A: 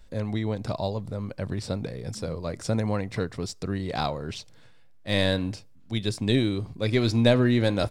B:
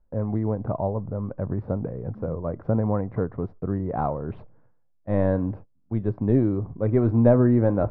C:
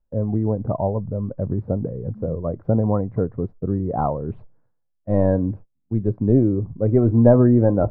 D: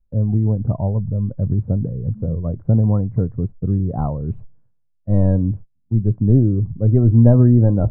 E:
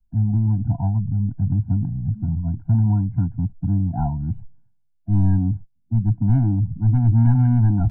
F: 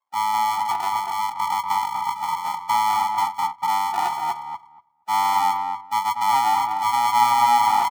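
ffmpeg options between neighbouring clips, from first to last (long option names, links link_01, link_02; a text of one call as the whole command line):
ffmpeg -i in.wav -af "agate=range=-16dB:threshold=-41dB:ratio=16:detection=peak,lowpass=frequency=1200:width=0.5412,lowpass=frequency=1200:width=1.3066,areverse,acompressor=mode=upward:threshold=-39dB:ratio=2.5,areverse,volume=3dB" out.wav
ffmpeg -i in.wav -af "afftdn=noise_reduction=12:noise_floor=-30,volume=4dB" out.wav
ffmpeg -i in.wav -af "bass=frequency=250:gain=14,treble=frequency=4000:gain=-9,volume=-6.5dB" out.wav
ffmpeg -i in.wav -filter_complex "[0:a]acrossover=split=110|540[link_01][link_02][link_03];[link_02]asoftclip=type=tanh:threshold=-18.5dB[link_04];[link_01][link_04][link_03]amix=inputs=3:normalize=0,afftfilt=real='re*eq(mod(floor(b*sr/1024/340),2),0)':imag='im*eq(mod(floor(b*sr/1024/340),2),0)':win_size=1024:overlap=0.75" out.wav
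ffmpeg -i in.wav -filter_complex "[0:a]acrusher=samples=41:mix=1:aa=0.000001,highpass=frequency=850:width_type=q:width=5.8,asplit=2[link_01][link_02];[link_02]adelay=239,lowpass=frequency=1400:poles=1,volume=-3.5dB,asplit=2[link_03][link_04];[link_04]adelay=239,lowpass=frequency=1400:poles=1,volume=0.16,asplit=2[link_05][link_06];[link_06]adelay=239,lowpass=frequency=1400:poles=1,volume=0.16[link_07];[link_03][link_05][link_07]amix=inputs=3:normalize=0[link_08];[link_01][link_08]amix=inputs=2:normalize=0" out.wav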